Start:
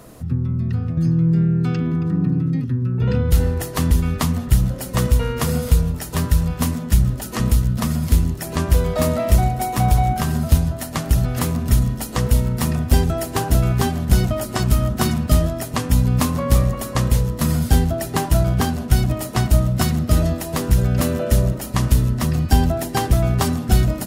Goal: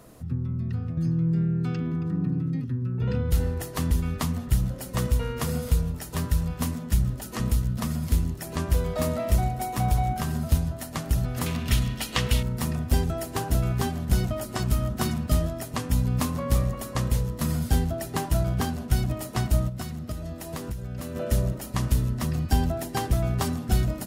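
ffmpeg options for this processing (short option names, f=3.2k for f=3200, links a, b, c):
-filter_complex "[0:a]asettb=1/sr,asplit=3[a][b][c];[a]atrim=end=11.464[d];[b]atrim=start=11.46:end=12.43,asetpts=PTS-STARTPTS,afade=t=in:d=0.004:c=qsin,afade=t=out:st=0.966:d=0.004:c=qsin,equalizer=f=2.9k:t=o:w=1.7:g=15[e];[c]atrim=start=12.426[f];[d][e]acrossfade=d=0.004:c1=hsin:c2=qsin[g];[g][f]acrossfade=d=0.004:c1=qsin:c2=hsin,asplit=3[h][i][j];[h]afade=t=out:st=19.68:d=0.02[k];[i]acompressor=threshold=-23dB:ratio=6,afade=t=in:st=19.68:d=0.02,afade=t=out:st=21.15:d=0.02[l];[j]afade=t=in:st=21.15:d=0.02[m];[k][l][m]amix=inputs=3:normalize=0,volume=-7.5dB"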